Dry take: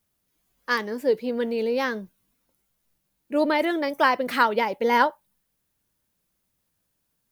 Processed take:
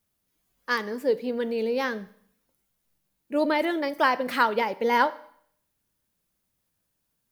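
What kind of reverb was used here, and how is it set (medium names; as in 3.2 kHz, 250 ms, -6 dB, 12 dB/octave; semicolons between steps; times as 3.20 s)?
Schroeder reverb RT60 0.63 s, combs from 28 ms, DRR 16.5 dB; trim -2 dB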